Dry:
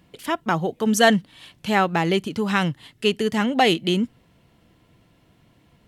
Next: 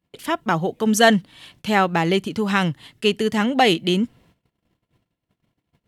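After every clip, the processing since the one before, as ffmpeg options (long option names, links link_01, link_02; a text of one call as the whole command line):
ffmpeg -i in.wav -af "agate=range=-26dB:threshold=-54dB:ratio=16:detection=peak,volume=1.5dB" out.wav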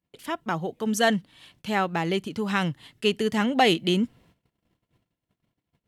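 ffmpeg -i in.wav -af "dynaudnorm=framelen=340:gausssize=7:maxgain=11.5dB,volume=-7.5dB" out.wav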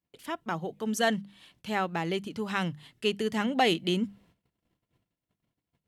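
ffmpeg -i in.wav -af "bandreject=frequency=50:width_type=h:width=6,bandreject=frequency=100:width_type=h:width=6,bandreject=frequency=150:width_type=h:width=6,bandreject=frequency=200:width_type=h:width=6,volume=-4.5dB" out.wav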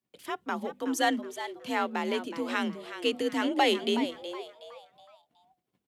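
ffmpeg -i in.wav -filter_complex "[0:a]afreqshift=48,asplit=2[link_01][link_02];[link_02]asplit=4[link_03][link_04][link_05][link_06];[link_03]adelay=370,afreqshift=120,volume=-11.5dB[link_07];[link_04]adelay=740,afreqshift=240,volume=-20.4dB[link_08];[link_05]adelay=1110,afreqshift=360,volume=-29.2dB[link_09];[link_06]adelay=1480,afreqshift=480,volume=-38.1dB[link_10];[link_07][link_08][link_09][link_10]amix=inputs=4:normalize=0[link_11];[link_01][link_11]amix=inputs=2:normalize=0" out.wav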